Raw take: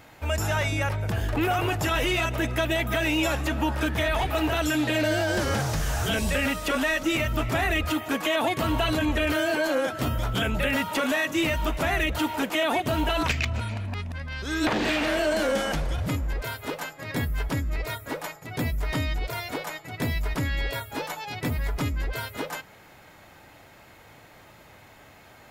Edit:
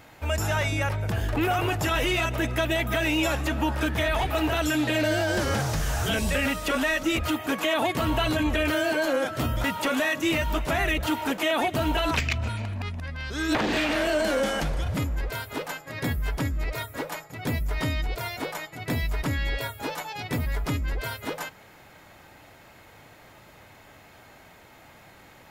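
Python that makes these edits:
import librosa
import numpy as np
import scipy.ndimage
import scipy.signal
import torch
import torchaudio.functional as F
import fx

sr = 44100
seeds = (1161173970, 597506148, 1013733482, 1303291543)

y = fx.edit(x, sr, fx.cut(start_s=7.18, length_s=0.62),
    fx.cut(start_s=10.26, length_s=0.5), tone=tone)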